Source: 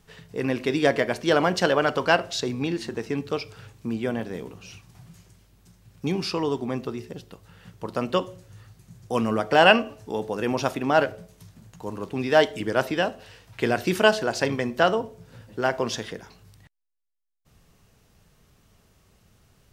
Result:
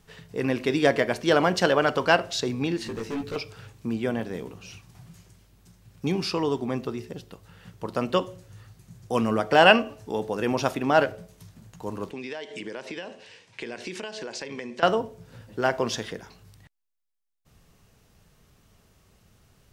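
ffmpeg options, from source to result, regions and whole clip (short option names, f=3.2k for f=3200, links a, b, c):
-filter_complex "[0:a]asettb=1/sr,asplit=3[a][b][c];[a]atrim=end=2.844[d];[b]atrim=start=2.84:end=3.36,asetpts=PTS-STARTPTS,afade=t=in:d=0.004:c=qsin,afade=t=out:st=0.516:d=0.004:c=qsin,asoftclip=type=hard:threshold=-30dB,asplit=2[e][f];[f]adelay=18,volume=-2.5dB[g];[e][g]amix=inputs=2:normalize=0,atrim=end_sample=22932[h];[c]atrim=start=3.356[i];[d][h]acrossfade=d=0.004:c1=hsin:c2=qsin[j];[j][i]acrossfade=d=0.004:c1=qsin:c2=hsin,asettb=1/sr,asplit=3[k][l][m];[k]atrim=end=12.114[n];[l]atrim=start=12.11:end=14.83,asetpts=PTS-STARTPTS,afade=t=in:d=0.004:c=qsin,afade=t=out:st=2.716:d=0.004:c=qsin,highpass=230,equalizer=f=290:t=q:w=4:g=-4,equalizer=f=700:t=q:w=4:g=-8,equalizer=f=1.3k:t=q:w=4:g=-9,equalizer=f=2.3k:t=q:w=4:g=4,lowpass=f=8.4k:w=0.5412,lowpass=f=8.4k:w=1.3066,acompressor=threshold=-31dB:ratio=10:attack=3.2:release=140:knee=1:detection=peak[o];[m]atrim=start=14.826[p];[n][o]acrossfade=d=0.004:c1=hsin:c2=qsin[q];[q][p]acrossfade=d=0.004:c1=qsin:c2=hsin"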